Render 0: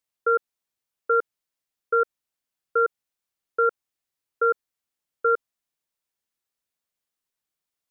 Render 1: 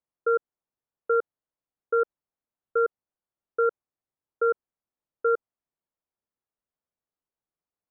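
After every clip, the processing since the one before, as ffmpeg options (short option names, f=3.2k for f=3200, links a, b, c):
-af "lowpass=1.1k"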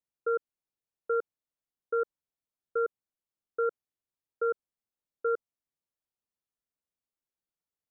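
-af "equalizer=f=1k:w=0.57:g=-3.5,volume=-3.5dB"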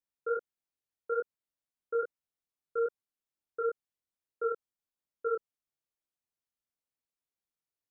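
-af "flanger=delay=19:depth=4.7:speed=2.3"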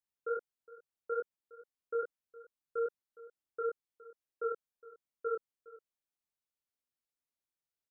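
-af "aecho=1:1:413:0.112,volume=-3.5dB"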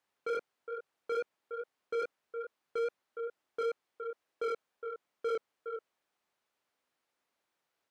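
-filter_complex "[0:a]asplit=2[a][b];[b]highpass=f=720:p=1,volume=29dB,asoftclip=type=tanh:threshold=-24.5dB[c];[a][c]amix=inputs=2:normalize=0,lowpass=f=1k:p=1,volume=-6dB,volume=-1dB"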